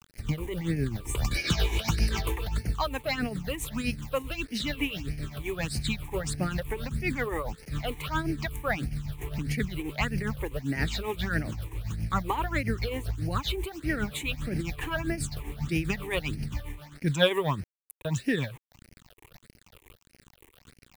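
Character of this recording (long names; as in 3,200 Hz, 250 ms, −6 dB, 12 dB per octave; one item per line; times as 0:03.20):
a quantiser's noise floor 8 bits, dither none
phaser sweep stages 8, 1.6 Hz, lowest notch 180–1,100 Hz
tremolo triangle 7.5 Hz, depth 70%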